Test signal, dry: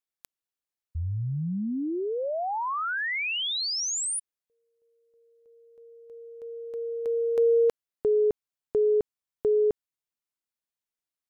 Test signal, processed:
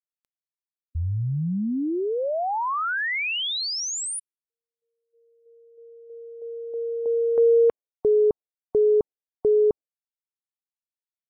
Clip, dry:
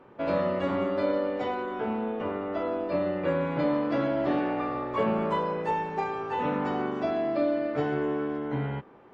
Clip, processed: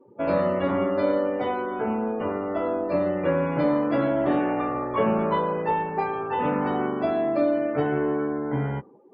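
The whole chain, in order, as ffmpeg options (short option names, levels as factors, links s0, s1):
-af "afftdn=nr=28:nf=-46,highshelf=f=4600:g=-5.5,volume=1.58"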